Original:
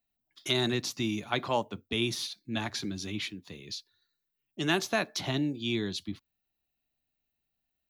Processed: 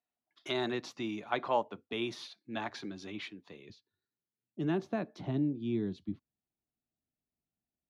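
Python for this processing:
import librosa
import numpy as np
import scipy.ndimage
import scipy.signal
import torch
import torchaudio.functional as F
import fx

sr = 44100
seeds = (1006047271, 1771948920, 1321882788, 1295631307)

y = fx.bandpass_q(x, sr, hz=fx.steps((0.0, 780.0), (3.7, 210.0)), q=0.64)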